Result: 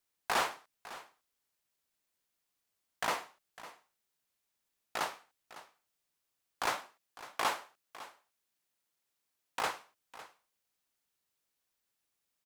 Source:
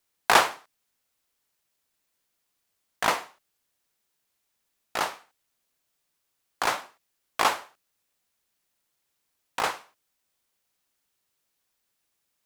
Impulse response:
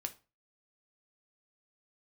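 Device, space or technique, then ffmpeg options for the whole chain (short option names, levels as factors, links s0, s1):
limiter into clipper: -filter_complex "[0:a]alimiter=limit=0.266:level=0:latency=1:release=40,asoftclip=type=hard:threshold=0.141,asettb=1/sr,asplit=3[s0][s1][s2];[s0]atrim=end=6.824[s3];[s1]atrim=start=6.82:end=9.6,asetpts=PTS-STARTPTS,afade=t=in:d=0.004:c=qsin,afade=t=out:st=2.776:d=0.004:c=qsin,highpass=f=110:p=1[s4];[s2]atrim=start=9.596[s5];[s3][s4]acrossfade=d=0.004:c1=hsin:c2=qsin[s6];[s6][s5]acrossfade=d=0.004:c1=qsin:c2=hsin,aecho=1:1:554:0.15,volume=0.473"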